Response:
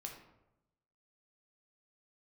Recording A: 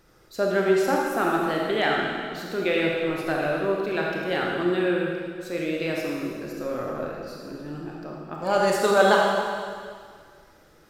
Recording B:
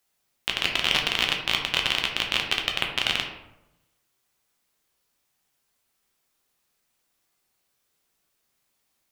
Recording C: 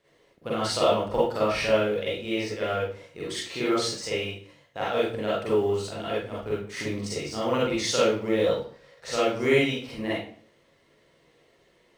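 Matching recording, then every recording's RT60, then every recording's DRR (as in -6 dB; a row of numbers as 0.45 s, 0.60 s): B; 2.0 s, 0.90 s, 0.50 s; -2.0 dB, 1.0 dB, -8.0 dB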